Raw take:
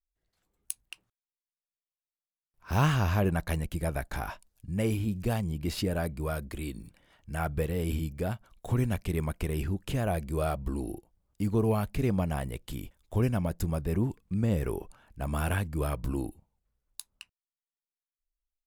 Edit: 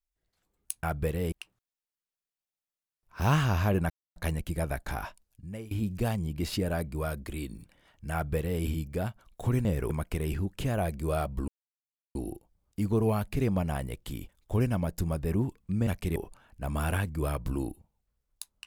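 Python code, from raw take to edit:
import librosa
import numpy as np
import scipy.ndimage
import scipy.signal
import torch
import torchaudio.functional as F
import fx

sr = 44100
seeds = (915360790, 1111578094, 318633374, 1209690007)

y = fx.edit(x, sr, fx.insert_silence(at_s=3.41, length_s=0.26),
    fx.fade_out_to(start_s=4.32, length_s=0.64, floor_db=-22.0),
    fx.duplicate(start_s=7.38, length_s=0.49, to_s=0.83),
    fx.swap(start_s=8.9, length_s=0.29, other_s=14.49, other_length_s=0.25),
    fx.insert_silence(at_s=10.77, length_s=0.67), tone=tone)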